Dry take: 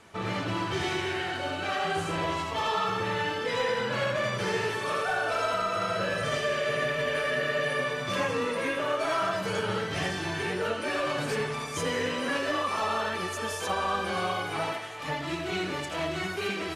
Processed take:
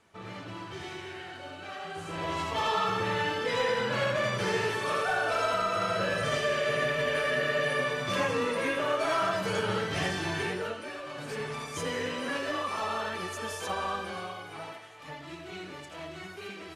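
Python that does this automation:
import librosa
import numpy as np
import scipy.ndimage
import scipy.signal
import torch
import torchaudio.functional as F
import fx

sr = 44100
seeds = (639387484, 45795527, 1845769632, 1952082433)

y = fx.gain(x, sr, db=fx.line((1.93, -10.5), (2.44, 0.0), (10.41, 0.0), (11.03, -12.0), (11.53, -3.5), (13.87, -3.5), (14.36, -10.5)))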